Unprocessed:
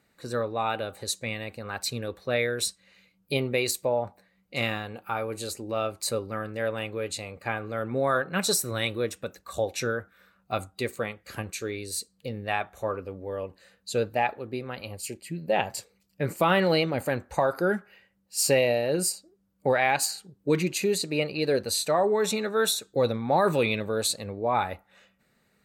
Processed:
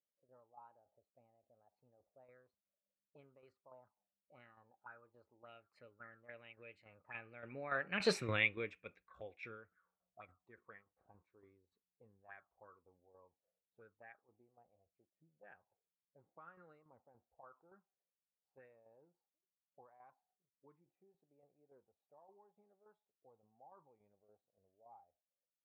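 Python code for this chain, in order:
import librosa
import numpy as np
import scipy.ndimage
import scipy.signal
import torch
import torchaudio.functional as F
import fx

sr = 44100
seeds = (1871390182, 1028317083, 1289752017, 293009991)

y = fx.doppler_pass(x, sr, speed_mps=17, closest_m=1.1, pass_at_s=8.17)
y = fx.tremolo_shape(y, sr, shape='saw_down', hz=3.5, depth_pct=60)
y = fx.envelope_lowpass(y, sr, base_hz=570.0, top_hz=2400.0, q=6.6, full_db=-58.5, direction='up')
y = F.gain(torch.from_numpy(y), 2.0).numpy()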